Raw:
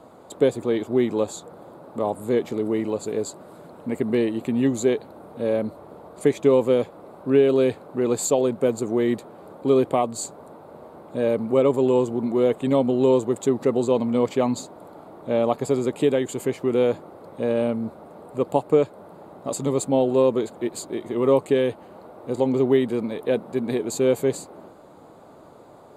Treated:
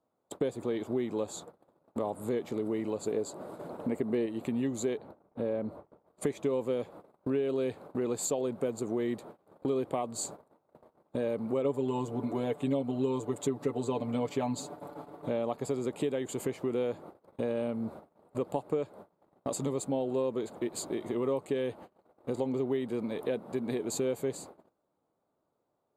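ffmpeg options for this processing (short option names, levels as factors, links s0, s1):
-filter_complex "[0:a]asettb=1/sr,asplit=3[s0][s1][s2];[s0]atrim=end=3.074[s3];[s1]atrim=start=3.07:end=4.26,asetpts=PTS-STARTPTS,afade=t=in:d=0.004:c=qsin,afade=t=out:st=1.186:d=0.004:c=qsin,equalizer=f=470:w=0.45:g=5[s4];[s2]atrim=start=4.256[s5];[s3][s4]acrossfade=d=0.004:c1=hsin:c2=qsin[s6];[s6][s5]acrossfade=d=0.004:c1=qsin:c2=hsin,asettb=1/sr,asplit=3[s7][s8][s9];[s7]atrim=end=4.974[s10];[s8]atrim=start=4.97:end=6.07,asetpts=PTS-STARTPTS,afade=t=in:d=0.004:c=qsin,afade=t=out:st=1.096:d=0.004:c=qsin,highshelf=f=2800:g=-11.5[s11];[s9]atrim=start=6.066[s12];[s10][s11]acrossfade=d=0.004:c1=hsin:c2=qsin[s13];[s13][s12]acrossfade=d=0.004:c1=qsin:c2=hsin,asettb=1/sr,asplit=3[s14][s15][s16];[s14]atrim=end=11.644[s17];[s15]atrim=start=11.64:end=15.29,asetpts=PTS-STARTPTS,afade=t=in:d=0.004:c=qsin,afade=t=out:st=3.646:d=0.004:c=qsin,aecho=1:1:6.9:0.87,atrim=end_sample=160965[s18];[s16]atrim=start=15.286[s19];[s17][s18]acrossfade=d=0.004:c1=hsin:c2=qsin[s20];[s20][s19]acrossfade=d=0.004:c1=qsin:c2=hsin,agate=range=0.0251:threshold=0.0112:ratio=16:detection=peak,acompressor=threshold=0.0251:ratio=3"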